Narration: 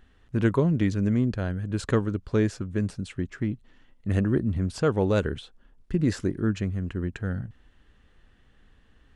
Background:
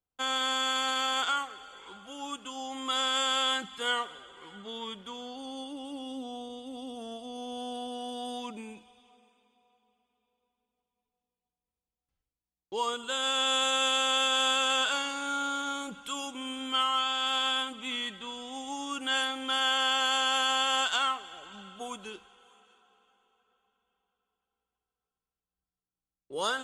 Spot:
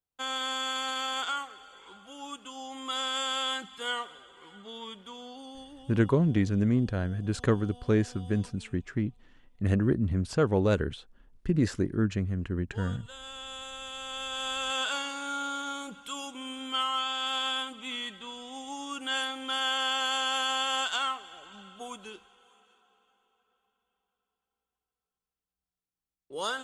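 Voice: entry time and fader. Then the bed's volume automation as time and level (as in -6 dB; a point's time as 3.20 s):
5.55 s, -1.5 dB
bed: 5.36 s -3 dB
6.20 s -14.5 dB
13.86 s -14.5 dB
14.90 s -2 dB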